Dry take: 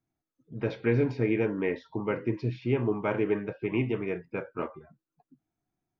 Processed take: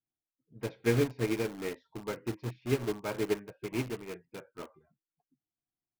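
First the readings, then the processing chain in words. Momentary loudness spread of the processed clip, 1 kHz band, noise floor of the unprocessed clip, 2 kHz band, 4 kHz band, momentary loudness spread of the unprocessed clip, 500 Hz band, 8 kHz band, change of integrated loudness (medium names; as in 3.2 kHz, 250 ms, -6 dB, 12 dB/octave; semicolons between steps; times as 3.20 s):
17 LU, -5.0 dB, under -85 dBFS, -4.0 dB, +4.5 dB, 10 LU, -4.5 dB, no reading, -4.0 dB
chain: in parallel at -5.5 dB: integer overflow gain 27.5 dB; on the sum: upward expansion 2.5:1, over -34 dBFS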